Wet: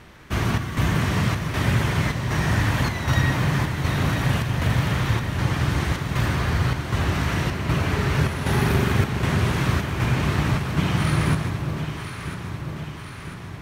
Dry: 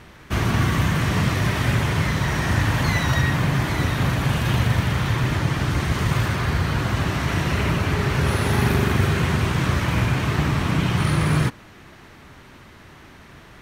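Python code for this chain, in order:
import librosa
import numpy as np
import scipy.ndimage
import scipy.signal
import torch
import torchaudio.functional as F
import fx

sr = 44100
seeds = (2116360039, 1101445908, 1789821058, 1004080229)

p1 = fx.chopper(x, sr, hz=1.3, depth_pct=60, duty_pct=75)
p2 = p1 + fx.echo_alternate(p1, sr, ms=498, hz=960.0, feedback_pct=77, wet_db=-6.5, dry=0)
y = p2 * librosa.db_to_amplitude(-1.5)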